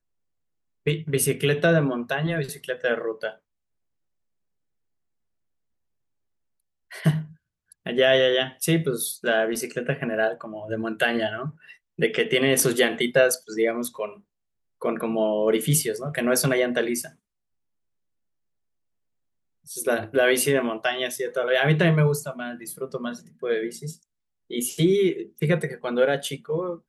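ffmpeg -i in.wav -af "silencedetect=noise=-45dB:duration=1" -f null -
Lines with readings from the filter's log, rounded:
silence_start: 3.35
silence_end: 6.91 | silence_duration: 3.56
silence_start: 17.11
silence_end: 19.67 | silence_duration: 2.55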